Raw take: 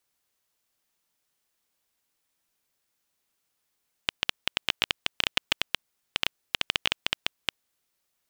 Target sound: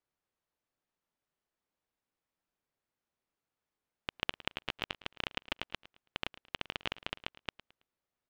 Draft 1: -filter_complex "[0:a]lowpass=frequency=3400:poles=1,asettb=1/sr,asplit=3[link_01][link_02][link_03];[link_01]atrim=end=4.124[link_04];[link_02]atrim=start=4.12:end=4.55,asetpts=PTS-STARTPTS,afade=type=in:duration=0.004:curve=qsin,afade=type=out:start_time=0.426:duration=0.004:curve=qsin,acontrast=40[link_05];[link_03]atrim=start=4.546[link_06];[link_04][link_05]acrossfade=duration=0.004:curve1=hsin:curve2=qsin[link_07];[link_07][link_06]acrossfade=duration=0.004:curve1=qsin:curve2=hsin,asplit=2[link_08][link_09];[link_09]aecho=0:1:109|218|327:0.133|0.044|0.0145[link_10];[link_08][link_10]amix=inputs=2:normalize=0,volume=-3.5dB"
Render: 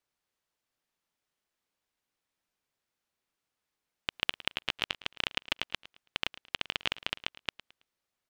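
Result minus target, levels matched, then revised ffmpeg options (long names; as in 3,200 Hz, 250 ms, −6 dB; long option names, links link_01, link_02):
1,000 Hz band −3.5 dB
-filter_complex "[0:a]lowpass=frequency=1100:poles=1,asettb=1/sr,asplit=3[link_01][link_02][link_03];[link_01]atrim=end=4.124[link_04];[link_02]atrim=start=4.12:end=4.55,asetpts=PTS-STARTPTS,afade=type=in:duration=0.004:curve=qsin,afade=type=out:start_time=0.426:duration=0.004:curve=qsin,acontrast=40[link_05];[link_03]atrim=start=4.546[link_06];[link_04][link_05]acrossfade=duration=0.004:curve1=hsin:curve2=qsin[link_07];[link_07][link_06]acrossfade=duration=0.004:curve1=qsin:curve2=hsin,asplit=2[link_08][link_09];[link_09]aecho=0:1:109|218|327:0.133|0.044|0.0145[link_10];[link_08][link_10]amix=inputs=2:normalize=0,volume=-3.5dB"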